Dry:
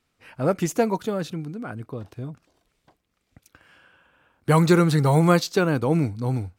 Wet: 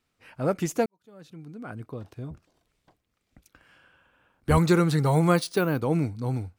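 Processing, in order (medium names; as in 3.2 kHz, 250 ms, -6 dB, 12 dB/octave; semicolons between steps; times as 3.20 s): 0.86–1.73 s: fade in quadratic; 2.30–4.58 s: octave divider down 1 oct, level -3 dB; 5.36–5.81 s: careless resampling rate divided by 3×, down filtered, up hold; trim -3.5 dB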